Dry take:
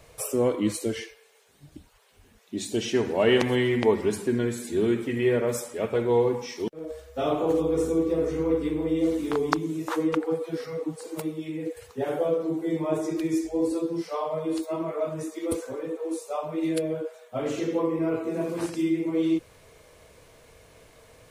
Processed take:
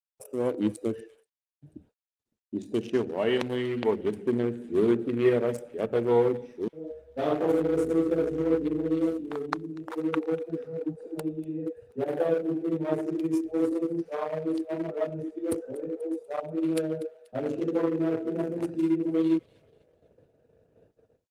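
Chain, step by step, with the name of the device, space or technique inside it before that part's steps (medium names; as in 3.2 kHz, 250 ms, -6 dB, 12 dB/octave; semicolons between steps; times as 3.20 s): local Wiener filter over 41 samples; bass shelf 150 Hz -3 dB; feedback echo behind a high-pass 242 ms, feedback 47%, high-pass 2.1 kHz, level -17.5 dB; 4.23–5.30 s: dynamic bell 760 Hz, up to +4 dB, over -40 dBFS, Q 0.78; video call (high-pass 100 Hz 12 dB/octave; level rider gain up to 9 dB; gate -49 dBFS, range -49 dB; trim -7.5 dB; Opus 32 kbps 48 kHz)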